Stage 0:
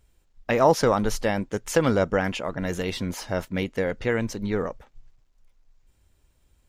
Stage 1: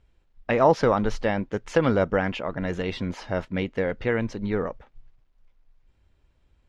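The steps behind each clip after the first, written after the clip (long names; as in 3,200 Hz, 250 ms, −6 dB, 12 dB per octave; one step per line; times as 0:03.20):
low-pass filter 3,500 Hz 12 dB per octave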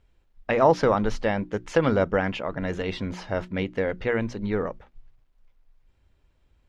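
mains-hum notches 60/120/180/240/300/360 Hz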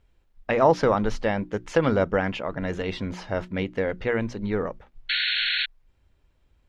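sound drawn into the spectrogram noise, 0:05.09–0:05.66, 1,400–4,400 Hz −25 dBFS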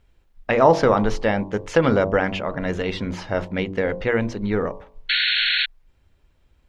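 hum removal 47.96 Hz, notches 24
level +4.5 dB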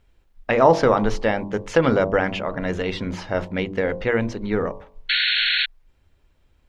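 mains-hum notches 50/100/150/200 Hz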